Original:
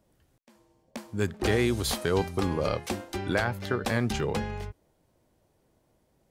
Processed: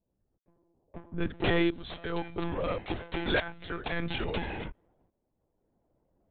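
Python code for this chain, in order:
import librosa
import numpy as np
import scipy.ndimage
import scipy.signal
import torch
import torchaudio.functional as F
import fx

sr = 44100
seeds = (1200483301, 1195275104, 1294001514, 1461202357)

y = fx.high_shelf(x, sr, hz=2200.0, db=fx.steps((0.0, -2.0), (1.28, 4.5), (2.95, 12.0)))
y = fx.env_lowpass(y, sr, base_hz=770.0, full_db=-23.5)
y = fx.tremolo_shape(y, sr, shape='saw_up', hz=0.59, depth_pct=80)
y = np.clip(y, -10.0 ** (-18.0 / 20.0), 10.0 ** (-18.0 / 20.0))
y = fx.lpc_monotone(y, sr, seeds[0], pitch_hz=170.0, order=16)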